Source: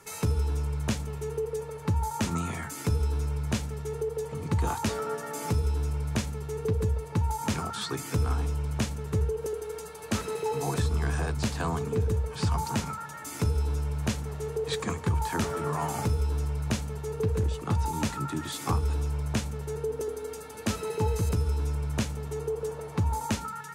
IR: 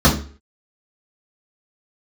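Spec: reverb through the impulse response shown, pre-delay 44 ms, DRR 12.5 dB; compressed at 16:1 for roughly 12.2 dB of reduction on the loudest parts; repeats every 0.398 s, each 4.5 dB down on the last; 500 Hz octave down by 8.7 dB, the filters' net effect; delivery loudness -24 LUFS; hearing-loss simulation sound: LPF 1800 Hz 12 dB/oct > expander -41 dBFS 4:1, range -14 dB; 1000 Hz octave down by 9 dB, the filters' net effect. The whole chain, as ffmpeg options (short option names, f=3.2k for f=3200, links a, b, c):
-filter_complex "[0:a]equalizer=f=500:t=o:g=-9,equalizer=f=1k:t=o:g=-8,acompressor=threshold=-35dB:ratio=16,aecho=1:1:398|796|1194|1592|1990|2388|2786|3184|3582:0.596|0.357|0.214|0.129|0.0772|0.0463|0.0278|0.0167|0.01,asplit=2[a][b];[1:a]atrim=start_sample=2205,adelay=44[c];[b][c]afir=irnorm=-1:irlink=0,volume=-35.5dB[d];[a][d]amix=inputs=2:normalize=0,lowpass=1.8k,agate=range=-14dB:threshold=-41dB:ratio=4,volume=7dB"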